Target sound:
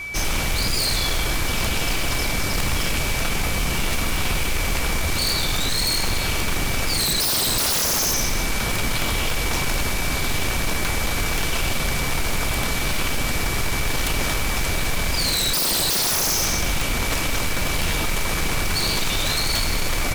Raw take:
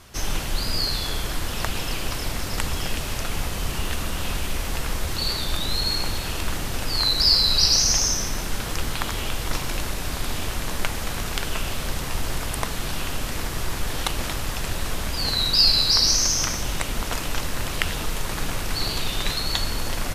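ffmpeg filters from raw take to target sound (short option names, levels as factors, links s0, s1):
-af "acontrast=62,aeval=exprs='val(0)+0.0355*sin(2*PI*2300*n/s)':c=same,aeval=exprs='0.158*(abs(mod(val(0)/0.158+3,4)-2)-1)':c=same"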